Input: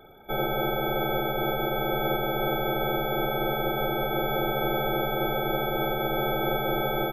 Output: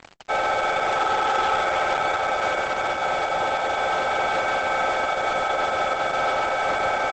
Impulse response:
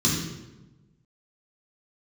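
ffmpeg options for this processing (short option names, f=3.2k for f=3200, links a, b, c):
-filter_complex "[0:a]highpass=f=570:w=0.5412,highpass=f=570:w=1.3066,highshelf=f=2.5k:t=q:w=1.5:g=-7.5,asettb=1/sr,asplit=3[a][b][c];[a]atrim=end=0.984[d];[b]atrim=start=0.98:end=1.58,asetpts=PTS-STARTPTS,afade=t=in:d=0.004:c=qsin,afade=t=out:st=0.596:d=0.004:c=qsin,aecho=1:1:2.4:0.58,atrim=end_sample=26460[e];[c]atrim=start=1.576[f];[d][e]acrossfade=d=0.004:c1=hsin:c2=qsin[g];[g][f]acrossfade=d=0.004:c1=qsin:c2=hsin,asettb=1/sr,asplit=3[h][i][j];[h]atrim=end=5.074[k];[i]atrim=start=5.07:end=6.32,asetpts=PTS-STARTPTS,afade=t=in:d=0.004:c=qsin,afade=t=out:st=1.246:d=0.004:c=qsin,bandreject=f=930:w=7.6[l];[j]atrim=start=6.316[m];[k][l]acrossfade=d=0.004:c1=hsin:c2=qsin[n];[n][m]acrossfade=d=0.004:c1=qsin:c2=hsin,alimiter=limit=-22dB:level=0:latency=1:release=64,acontrast=30,asoftclip=type=hard:threshold=-25dB,acrusher=bits=6:mix=0:aa=0.000001,asplit=2[o][p];[p]aecho=0:1:660:0.141[q];[o][q]amix=inputs=2:normalize=0,volume=6dB" -ar 48000 -c:a libopus -b:a 12k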